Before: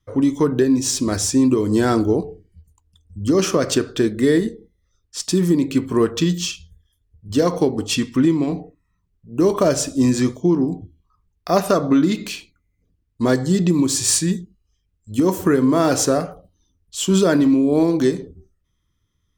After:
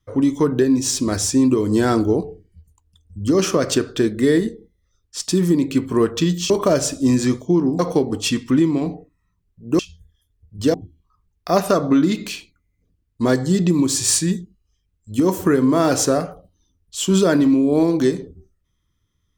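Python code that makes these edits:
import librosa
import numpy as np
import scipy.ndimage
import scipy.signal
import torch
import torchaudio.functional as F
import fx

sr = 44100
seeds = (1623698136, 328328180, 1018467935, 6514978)

y = fx.edit(x, sr, fx.swap(start_s=6.5, length_s=0.95, other_s=9.45, other_length_s=1.29), tone=tone)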